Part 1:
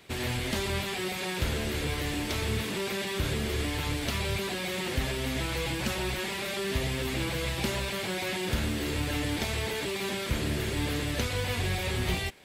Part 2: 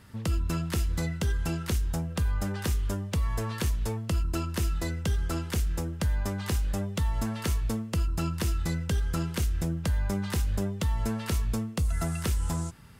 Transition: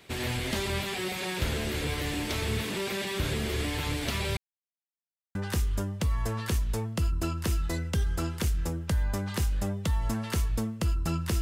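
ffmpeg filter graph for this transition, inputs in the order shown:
ffmpeg -i cue0.wav -i cue1.wav -filter_complex "[0:a]apad=whole_dur=11.41,atrim=end=11.41,asplit=2[link_01][link_02];[link_01]atrim=end=4.37,asetpts=PTS-STARTPTS,afade=type=out:start_time=4.366:duration=0.004:curve=hsin[link_03];[link_02]atrim=start=4.37:end=5.35,asetpts=PTS-STARTPTS,volume=0[link_04];[1:a]atrim=start=2.47:end=8.53,asetpts=PTS-STARTPTS,afade=type=in:duration=0.004:curve=hsin[link_05];[link_03][link_04][link_05]concat=n=3:v=0:a=1" out.wav

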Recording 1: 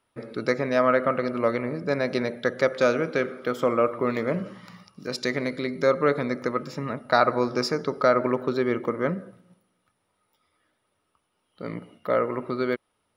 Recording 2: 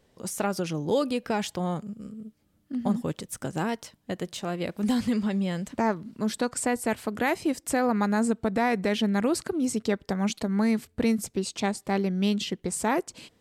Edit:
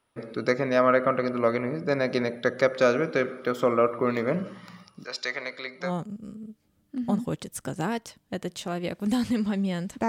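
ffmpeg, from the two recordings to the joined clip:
ffmpeg -i cue0.wav -i cue1.wav -filter_complex "[0:a]asettb=1/sr,asplit=3[link_01][link_02][link_03];[link_01]atrim=end=5.044[link_04];[link_02]atrim=start=5.04:end=5.92,asetpts=PTS-STARTPTS,afade=type=in:duration=0.004:curve=qsin,afade=type=out:start_time=0.876:duration=0.004:curve=qsin,acrossover=split=580 7600:gain=0.0891 1 0.126[link_05][link_06][link_07];[link_05][link_06][link_07]amix=inputs=3:normalize=0[link_08];[link_03]atrim=start=5.916[link_09];[link_04][link_08]acrossfade=duration=0.004:curve1=hsin:curve2=qsin[link_10];[link_10][link_09]acrossfade=duration=0.004:curve1=qsin:curve2=hsin,apad=whole_dur=10.08,atrim=end=10.08,atrim=end=5.92,asetpts=PTS-STARTPTS[link_11];[1:a]atrim=start=1.57:end=5.85,asetpts=PTS-STARTPTS[link_12];[link_11][link_12]acrossfade=duration=0.12:curve1=tri:curve2=tri" out.wav

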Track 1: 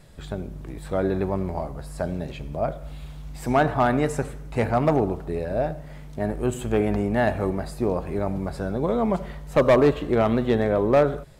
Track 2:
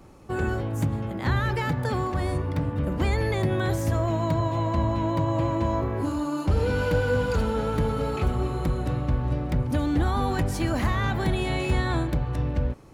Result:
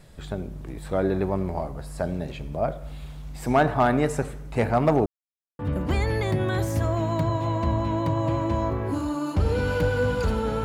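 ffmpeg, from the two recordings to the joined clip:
ffmpeg -i cue0.wav -i cue1.wav -filter_complex "[0:a]apad=whole_dur=10.64,atrim=end=10.64,asplit=2[link_01][link_02];[link_01]atrim=end=5.06,asetpts=PTS-STARTPTS,afade=type=out:start_time=5.056:duration=0.004:curve=hsin[link_03];[link_02]atrim=start=5.06:end=5.59,asetpts=PTS-STARTPTS,volume=0[link_04];[1:a]atrim=start=2.7:end=7.75,asetpts=PTS-STARTPTS,afade=type=in:duration=0.004:curve=hsin[link_05];[link_03][link_04][link_05]concat=n=3:v=0:a=1" out.wav

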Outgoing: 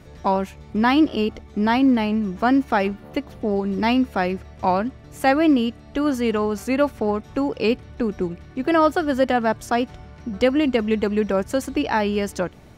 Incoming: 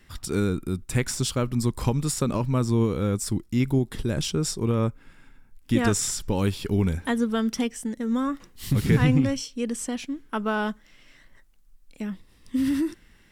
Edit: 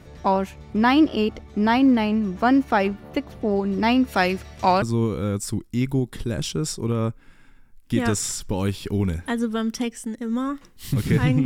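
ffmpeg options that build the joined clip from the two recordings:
ffmpeg -i cue0.wav -i cue1.wav -filter_complex "[0:a]asplit=3[link_01][link_02][link_03];[link_01]afade=type=out:start_time=4.07:duration=0.02[link_04];[link_02]highshelf=frequency=2200:gain=12,afade=type=in:start_time=4.07:duration=0.02,afade=type=out:start_time=4.82:duration=0.02[link_05];[link_03]afade=type=in:start_time=4.82:duration=0.02[link_06];[link_04][link_05][link_06]amix=inputs=3:normalize=0,apad=whole_dur=11.45,atrim=end=11.45,atrim=end=4.822[link_07];[1:a]atrim=start=2.608:end=9.24[link_08];[link_07][link_08]acrossfade=duration=0.004:curve1=hsin:curve2=hsin" out.wav

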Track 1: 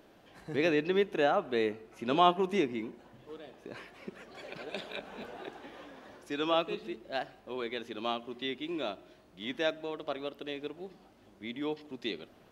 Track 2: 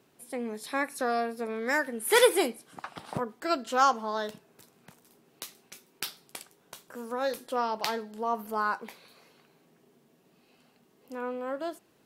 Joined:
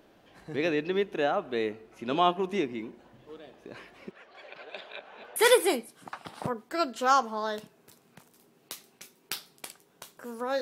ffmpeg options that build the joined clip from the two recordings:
ffmpeg -i cue0.wav -i cue1.wav -filter_complex "[0:a]asettb=1/sr,asplit=3[link_01][link_02][link_03];[link_01]atrim=end=4.114[link_04];[link_02]atrim=start=4.11:end=5.36,asetpts=PTS-STARTPTS,afade=type=in:duration=0.004:curve=qsin,afade=type=out:start_time=1.246:duration=0.004:curve=qsin,acrossover=split=480 4400:gain=0.158 1 0.224[link_05][link_06][link_07];[link_05][link_06][link_07]amix=inputs=3:normalize=0[link_08];[link_03]atrim=start=5.356[link_09];[link_04][link_08]acrossfade=duration=0.004:curve1=hsin:curve2=qsin[link_10];[link_10][link_09]acrossfade=duration=0.004:curve1=qsin:curve2=hsin,apad=whole_dur=10.61,atrim=end=10.61,atrim=end=5.362[link_11];[1:a]atrim=start=2.068:end=7.32[link_12];[link_11][link_12]acrossfade=duration=0.004:curve1=hsin:curve2=hsin" out.wav

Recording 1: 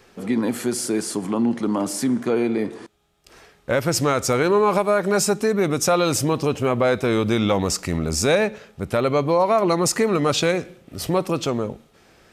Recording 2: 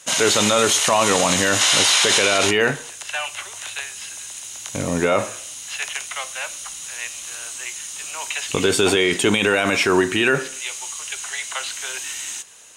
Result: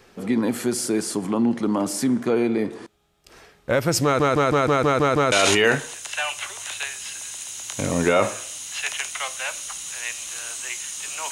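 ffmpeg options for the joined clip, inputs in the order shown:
ffmpeg -i cue0.wav -i cue1.wav -filter_complex "[0:a]apad=whole_dur=11.31,atrim=end=11.31,asplit=8[link_01][link_02][link_03][link_04][link_05][link_06][link_07][link_08];[link_01]atrim=end=4.202[link_09];[link_02]atrim=start=4.038:end=4.202[link_10];[link_03]atrim=start=4.038:end=4.202[link_11];[link_04]atrim=start=4.038:end=4.202[link_12];[link_05]atrim=start=4.038:end=4.202[link_13];[link_06]atrim=start=4.038:end=4.202[link_14];[link_07]atrim=start=4.038:end=4.202[link_15];[link_08]atrim=start=4.038:end=4.202[link_16];[1:a]atrim=start=2.278:end=8.27[link_17];[link_09][link_10]acrossfade=duration=0.004:curve1=hsin:curve2=hsin[link_18];[link_18][link_11]acrossfade=duration=0.004:curve1=hsin:curve2=hsin[link_19];[link_19][link_12]acrossfade=duration=0.004:curve1=hsin:curve2=hsin[link_20];[link_20][link_13]acrossfade=duration=0.004:curve1=hsin:curve2=hsin[link_21];[link_21][link_14]acrossfade=duration=0.004:curve1=hsin:curve2=hsin[link_22];[link_22][link_15]acrossfade=duration=0.004:curve1=hsin:curve2=hsin[link_23];[link_23][link_16]acrossfade=duration=0.004:curve1=hsin:curve2=hsin[link_24];[link_24][link_17]acrossfade=duration=0.004:curve1=hsin:curve2=hsin" out.wav

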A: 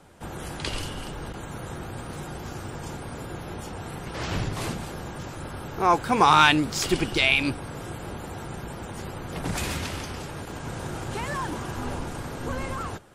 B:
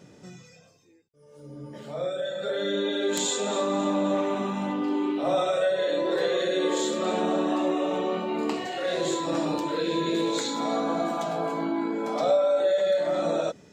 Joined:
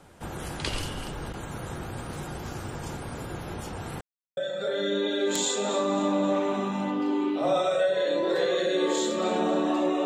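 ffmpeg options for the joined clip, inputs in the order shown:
ffmpeg -i cue0.wav -i cue1.wav -filter_complex "[0:a]apad=whole_dur=10.05,atrim=end=10.05,asplit=2[link_01][link_02];[link_01]atrim=end=4.01,asetpts=PTS-STARTPTS,afade=type=out:start_time=4.006:duration=0.004:curve=hsin[link_03];[link_02]atrim=start=4.01:end=4.37,asetpts=PTS-STARTPTS,volume=0[link_04];[1:a]atrim=start=2.19:end=7.87,asetpts=PTS-STARTPTS,afade=type=in:duration=0.004:curve=hsin[link_05];[link_03][link_04][link_05]concat=n=3:v=0:a=1" out.wav

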